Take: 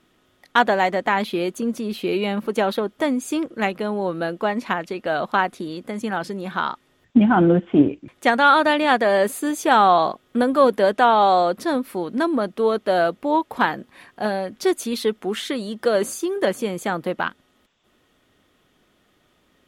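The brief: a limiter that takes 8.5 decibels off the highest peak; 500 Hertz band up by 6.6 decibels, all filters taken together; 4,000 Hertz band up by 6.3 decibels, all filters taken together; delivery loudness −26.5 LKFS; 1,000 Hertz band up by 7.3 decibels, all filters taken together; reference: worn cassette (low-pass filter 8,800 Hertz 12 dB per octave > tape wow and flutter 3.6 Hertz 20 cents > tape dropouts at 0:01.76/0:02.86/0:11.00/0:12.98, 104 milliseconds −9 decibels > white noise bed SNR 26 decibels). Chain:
parametric band 500 Hz +6 dB
parametric band 1,000 Hz +7 dB
parametric band 4,000 Hz +7.5 dB
brickwall limiter −6 dBFS
low-pass filter 8,800 Hz 12 dB per octave
tape wow and flutter 3.6 Hz 20 cents
tape dropouts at 0:01.76/0:02.86/0:11.00/0:12.98, 104 ms −9 dB
white noise bed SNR 26 dB
level −8 dB

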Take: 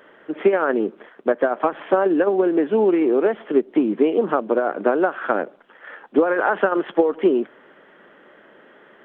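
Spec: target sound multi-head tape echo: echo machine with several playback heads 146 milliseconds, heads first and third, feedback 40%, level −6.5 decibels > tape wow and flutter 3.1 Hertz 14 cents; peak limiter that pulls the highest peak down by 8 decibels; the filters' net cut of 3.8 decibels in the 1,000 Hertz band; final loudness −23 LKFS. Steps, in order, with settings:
parametric band 1,000 Hz −5.5 dB
brickwall limiter −14 dBFS
echo machine with several playback heads 146 ms, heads first and third, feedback 40%, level −6.5 dB
tape wow and flutter 3.1 Hz 14 cents
level −0.5 dB

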